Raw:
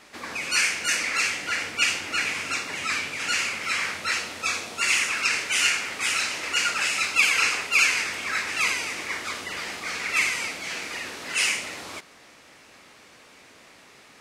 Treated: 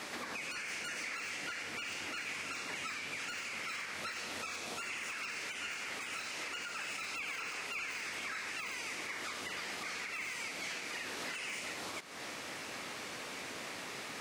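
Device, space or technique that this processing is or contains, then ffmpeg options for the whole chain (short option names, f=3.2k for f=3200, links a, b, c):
podcast mastering chain: -af "highpass=91,deesser=0.7,acompressor=threshold=-45dB:ratio=3,alimiter=level_in=15dB:limit=-24dB:level=0:latency=1:release=253,volume=-15dB,volume=8dB" -ar 48000 -c:a libmp3lame -b:a 112k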